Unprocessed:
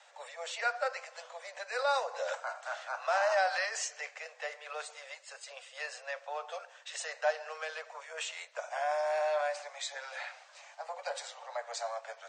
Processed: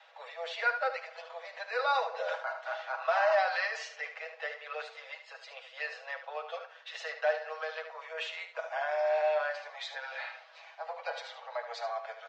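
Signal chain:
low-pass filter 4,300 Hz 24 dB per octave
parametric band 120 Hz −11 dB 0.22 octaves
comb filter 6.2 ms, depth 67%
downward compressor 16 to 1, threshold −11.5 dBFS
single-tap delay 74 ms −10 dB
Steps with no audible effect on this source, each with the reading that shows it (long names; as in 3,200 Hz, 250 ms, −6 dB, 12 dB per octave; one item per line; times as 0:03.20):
parametric band 120 Hz: nothing at its input below 430 Hz
downward compressor, threshold −11.5 dBFS: peak of its input −17.0 dBFS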